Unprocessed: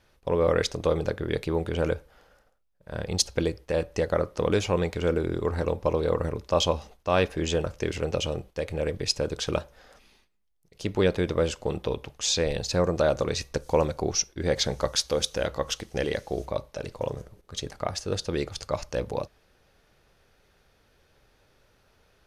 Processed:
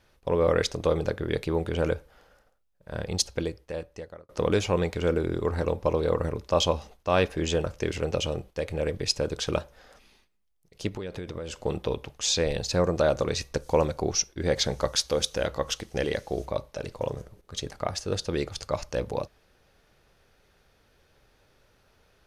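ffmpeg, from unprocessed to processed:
ffmpeg -i in.wav -filter_complex "[0:a]asplit=3[link_01][link_02][link_03];[link_01]afade=type=out:start_time=10.88:duration=0.02[link_04];[link_02]acompressor=threshold=-31dB:ratio=12:attack=3.2:release=140:knee=1:detection=peak,afade=type=in:start_time=10.88:duration=0.02,afade=type=out:start_time=11.54:duration=0.02[link_05];[link_03]afade=type=in:start_time=11.54:duration=0.02[link_06];[link_04][link_05][link_06]amix=inputs=3:normalize=0,asplit=2[link_07][link_08];[link_07]atrim=end=4.29,asetpts=PTS-STARTPTS,afade=type=out:start_time=2.96:duration=1.33[link_09];[link_08]atrim=start=4.29,asetpts=PTS-STARTPTS,afade=type=in:duration=0.004:curve=hsin[link_10];[link_09][link_10]concat=n=2:v=0:a=1" out.wav

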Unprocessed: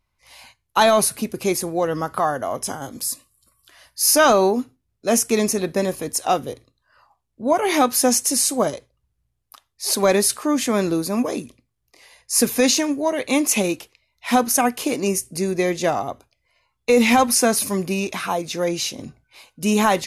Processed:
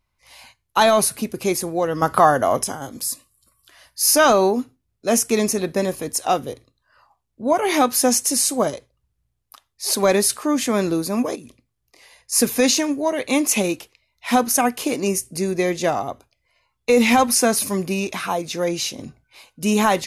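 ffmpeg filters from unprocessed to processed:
ffmpeg -i in.wav -filter_complex "[0:a]asettb=1/sr,asplit=3[link_01][link_02][link_03];[link_01]atrim=end=11.354[link_04];[link_02]atrim=start=11.35:end=12.32,asetpts=PTS-STARTPTS,afade=type=in:duration=0.004:curve=qsin,afade=type=out:start_time=0.966:duration=0.004:curve=qsin,acompressor=threshold=-34dB:ratio=5:attack=3.2:release=140:knee=1:detection=peak[link_05];[link_03]atrim=start=12.316[link_06];[link_04][link_05]acrossfade=duration=0.004:curve1=hsin:curve2=qsin[link_07];[link_07][link_06]acrossfade=duration=0.004:curve1=qsin:curve2=hsin,asplit=3[link_08][link_09][link_10];[link_08]atrim=end=2.022[link_11];[link_09]atrim=start=2.018:end=2.642,asetpts=PTS-STARTPTS,volume=7dB[link_12];[link_10]atrim=start=2.638[link_13];[link_11][link_12]acrossfade=duration=0.004:curve1=hsin:curve2=hsin[link_14];[link_14][link_13]acrossfade=duration=0.004:curve1=hsin:curve2=hsin" out.wav

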